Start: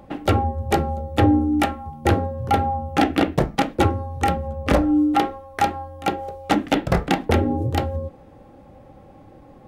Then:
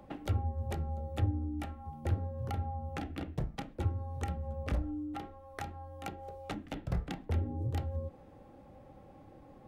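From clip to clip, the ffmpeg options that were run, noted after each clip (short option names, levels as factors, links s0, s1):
-filter_complex "[0:a]acrossover=split=140[s0][s1];[s1]acompressor=threshold=0.0282:ratio=10[s2];[s0][s2]amix=inputs=2:normalize=0,volume=0.376"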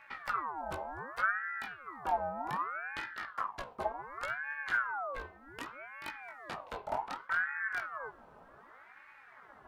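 -af "flanger=delay=16:depth=6.2:speed=0.22,aeval=exprs='val(0)*sin(2*PI*1200*n/s+1200*0.4/0.66*sin(2*PI*0.66*n/s))':c=same,volume=1.58"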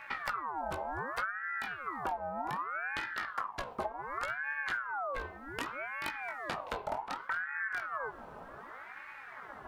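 -af "acompressor=threshold=0.00891:ratio=12,volume=2.66"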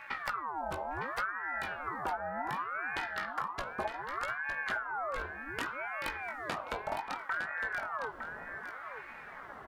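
-af "aecho=1:1:909:0.398"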